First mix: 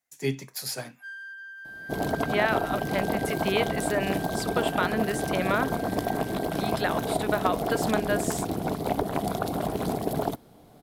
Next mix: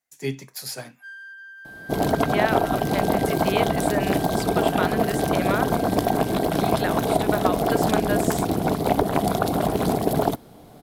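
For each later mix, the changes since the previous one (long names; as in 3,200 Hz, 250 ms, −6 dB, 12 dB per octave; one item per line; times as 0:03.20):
second sound +6.5 dB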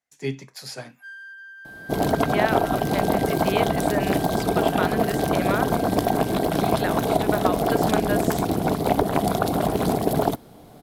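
speech: add high-frequency loss of the air 53 metres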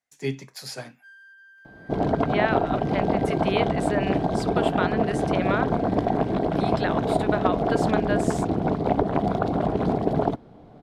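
first sound −9.0 dB
second sound: add head-to-tape spacing loss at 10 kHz 29 dB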